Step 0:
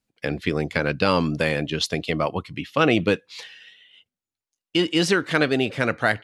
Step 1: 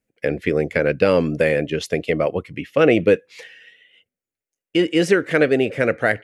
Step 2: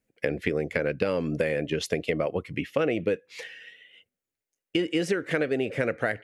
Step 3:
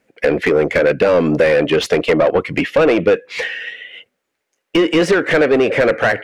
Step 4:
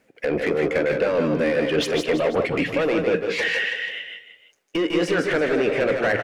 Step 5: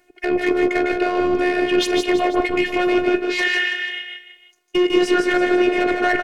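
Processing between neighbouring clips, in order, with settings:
graphic EQ 500/1000/2000/4000 Hz +10/-9/+7/-10 dB
compressor, threshold -23 dBFS, peak gain reduction 12.5 dB
overdrive pedal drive 24 dB, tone 1400 Hz, clips at -9 dBFS; gain +6.5 dB
reverse; compressor 12:1, threshold -21 dBFS, peak gain reduction 12.5 dB; reverse; tapped delay 46/151/168/330/489 ms -18.5/-6.5/-8/-14/-19 dB; gain +1.5 dB
robotiser 358 Hz; gain +6 dB

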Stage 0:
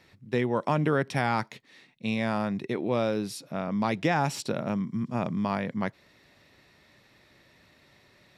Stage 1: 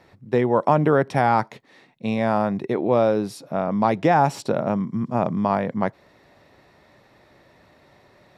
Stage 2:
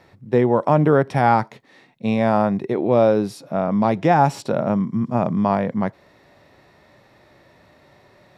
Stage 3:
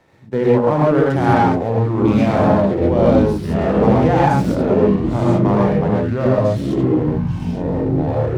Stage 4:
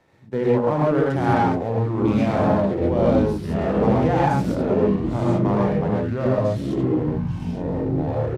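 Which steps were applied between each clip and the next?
EQ curve 230 Hz 0 dB, 770 Hz +6 dB, 2600 Hz -6 dB; gain +5 dB
harmonic-percussive split percussive -6 dB; gain +4 dB
echoes that change speed 0.709 s, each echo -5 st, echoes 3; non-linear reverb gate 0.16 s rising, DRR -4 dB; running maximum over 5 samples; gain -4 dB
downsampling 32000 Hz; gain -5 dB

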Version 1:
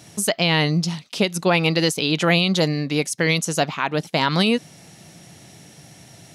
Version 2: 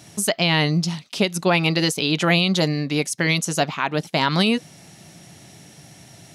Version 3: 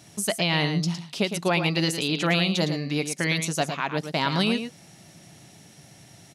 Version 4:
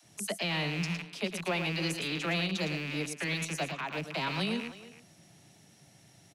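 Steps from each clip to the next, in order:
notch 490 Hz, Q 12
echo 0.11 s -8.5 dB; gain -5 dB
rattling part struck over -37 dBFS, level -18 dBFS; dispersion lows, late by 40 ms, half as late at 380 Hz; speakerphone echo 0.32 s, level -14 dB; gain -9 dB

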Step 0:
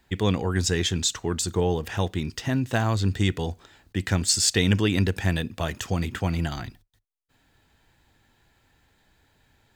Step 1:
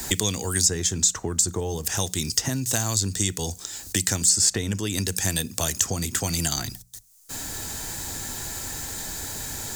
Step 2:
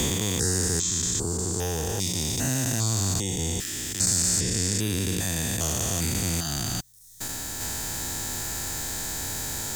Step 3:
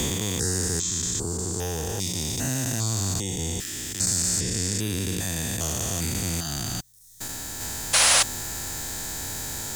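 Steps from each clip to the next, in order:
resonant high shelf 4500 Hz +14 dB, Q 1.5; notches 60/120/180 Hz; three-band squash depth 100%; gain -3.5 dB
stepped spectrum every 0.4 s; sine folder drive 3 dB, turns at -8 dBFS; reverb removal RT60 0.61 s; gain -1.5 dB
painted sound noise, 7.93–8.23, 480–11000 Hz -17 dBFS; gain -1 dB

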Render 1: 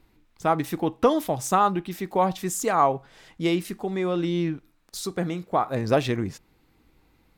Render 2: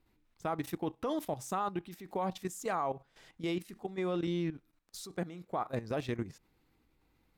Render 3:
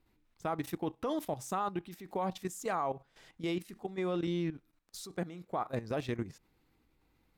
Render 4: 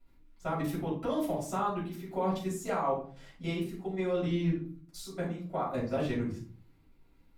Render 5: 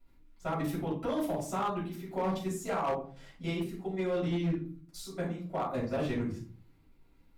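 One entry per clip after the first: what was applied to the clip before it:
level quantiser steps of 13 dB; gain -6.5 dB
nothing audible
shoebox room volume 300 m³, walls furnished, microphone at 6.8 m; gain -8.5 dB
overloaded stage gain 26 dB

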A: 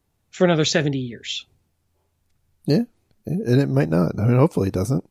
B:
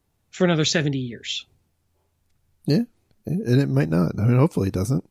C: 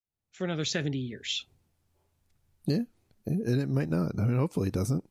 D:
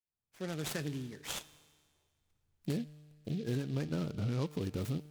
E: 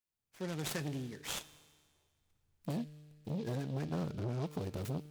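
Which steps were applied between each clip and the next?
dynamic EQ 640 Hz, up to -5 dB, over -33 dBFS, Q 0.92
opening faded in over 1.34 s; compressor 5:1, threshold -20 dBFS, peak gain reduction 7.5 dB; gain -3.5 dB
resonator 150 Hz, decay 1.7 s, mix 60%; noise-modulated delay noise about 3200 Hz, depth 0.053 ms
core saturation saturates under 550 Hz; gain +1 dB

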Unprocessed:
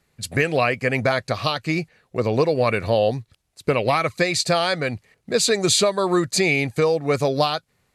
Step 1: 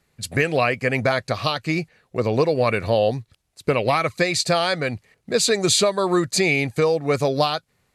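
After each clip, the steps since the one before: nothing audible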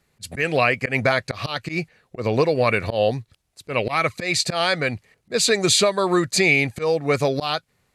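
dynamic EQ 2200 Hz, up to +4 dB, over -36 dBFS, Q 1.1; auto swell 0.106 s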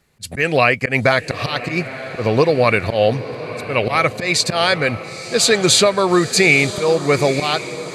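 diffused feedback echo 0.93 s, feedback 53%, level -13 dB; gain +4.5 dB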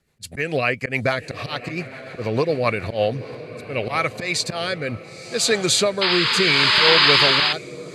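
painted sound noise, 6.01–7.53, 850–5100 Hz -10 dBFS; rotary speaker horn 7 Hz, later 0.7 Hz, at 2.65; gain -4.5 dB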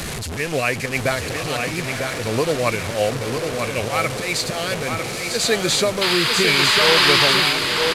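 delta modulation 64 kbps, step -22 dBFS; echo 0.95 s -5.5 dB

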